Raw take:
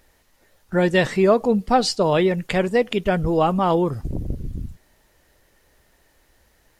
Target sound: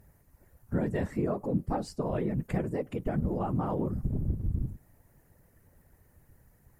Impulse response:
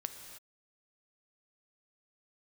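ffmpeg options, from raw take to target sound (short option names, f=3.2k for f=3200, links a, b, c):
-af "aexciter=amount=8.2:drive=4.7:freq=4.8k,equalizer=f=5k:w=0.7:g=-13,acompressor=threshold=-32dB:ratio=2,bass=f=250:g=9,treble=f=4k:g=-15,afftfilt=real='hypot(re,im)*cos(2*PI*random(0))':imag='hypot(re,im)*sin(2*PI*random(1))':win_size=512:overlap=0.75"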